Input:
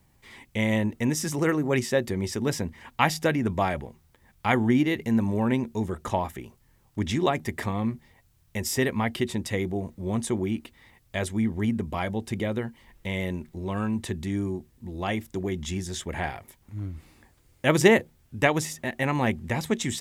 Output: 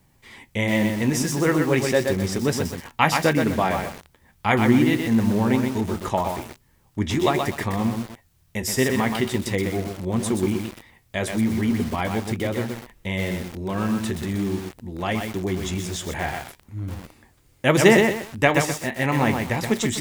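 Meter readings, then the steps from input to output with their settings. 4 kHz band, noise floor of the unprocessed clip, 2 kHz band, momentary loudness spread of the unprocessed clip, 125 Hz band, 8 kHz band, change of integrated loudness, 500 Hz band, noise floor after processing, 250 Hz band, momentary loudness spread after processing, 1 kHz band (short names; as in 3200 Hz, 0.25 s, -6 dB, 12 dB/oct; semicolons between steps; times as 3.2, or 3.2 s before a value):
+4.5 dB, -63 dBFS, +4.5 dB, 12 LU, +4.0 dB, +4.5 dB, +4.5 dB, +4.5 dB, -61 dBFS, +4.5 dB, 13 LU, +4.5 dB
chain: flange 0.4 Hz, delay 6.6 ms, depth 9.6 ms, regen -64%; low shelf 61 Hz -3 dB; lo-fi delay 0.125 s, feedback 35%, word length 7-bit, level -4 dB; gain +7.5 dB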